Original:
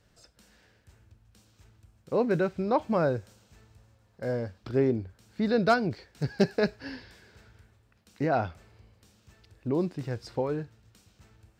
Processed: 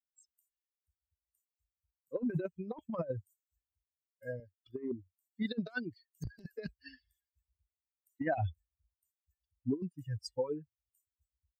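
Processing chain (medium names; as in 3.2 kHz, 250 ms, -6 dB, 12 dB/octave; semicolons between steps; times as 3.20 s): expander on every frequency bin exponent 3; high-pass 130 Hz 12 dB/octave, from 4.40 s 320 Hz, from 6.25 s 78 Hz; compressor with a negative ratio -37 dBFS, ratio -0.5; trim +2.5 dB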